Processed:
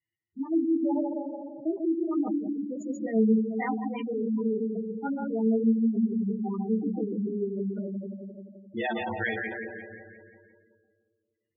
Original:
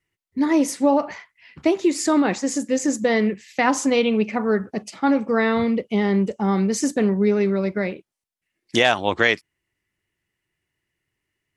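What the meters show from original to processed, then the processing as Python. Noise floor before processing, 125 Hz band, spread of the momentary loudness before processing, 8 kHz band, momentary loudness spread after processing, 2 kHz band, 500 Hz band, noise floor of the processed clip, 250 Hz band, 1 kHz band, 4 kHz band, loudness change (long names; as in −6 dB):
−82 dBFS, can't be measured, 6 LU, below −30 dB, 14 LU, −12.5 dB, −10.0 dB, −83 dBFS, −5.5 dB, −12.5 dB, below −20 dB, −8.0 dB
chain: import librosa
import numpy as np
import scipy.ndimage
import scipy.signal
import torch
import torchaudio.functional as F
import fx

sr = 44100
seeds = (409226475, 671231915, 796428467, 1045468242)

y = fx.notch(x, sr, hz=540.0, q=12.0)
y = fx.echo_filtered(y, sr, ms=143, feedback_pct=65, hz=2300.0, wet_db=-5.5)
y = fx.chorus_voices(y, sr, voices=2, hz=0.78, base_ms=18, depth_ms=4.6, mix_pct=40)
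y = fx.highpass(y, sr, hz=85.0, slope=6)
y = fx.low_shelf(y, sr, hz=250.0, db=3.0)
y = fx.hum_notches(y, sr, base_hz=60, count=9)
y = fx.comb_fb(y, sr, f0_hz=110.0, decay_s=0.38, harmonics='all', damping=0.0, mix_pct=80)
y = fx.echo_feedback(y, sr, ms=174, feedback_pct=57, wet_db=-6.5)
y = fx.spec_gate(y, sr, threshold_db=-10, keep='strong')
y = y * librosa.db_to_amplitude(1.0)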